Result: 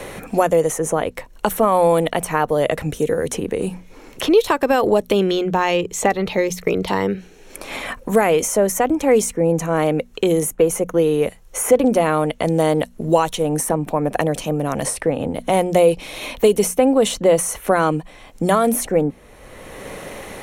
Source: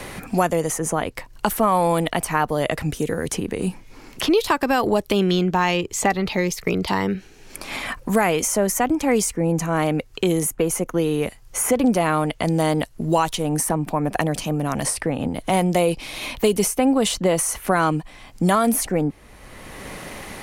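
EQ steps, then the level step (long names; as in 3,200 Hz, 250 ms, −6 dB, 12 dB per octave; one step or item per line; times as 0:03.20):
parametric band 500 Hz +7.5 dB 0.72 octaves
mains-hum notches 60/120/180/240 Hz
notch filter 4,800 Hz, Q 7.1
0.0 dB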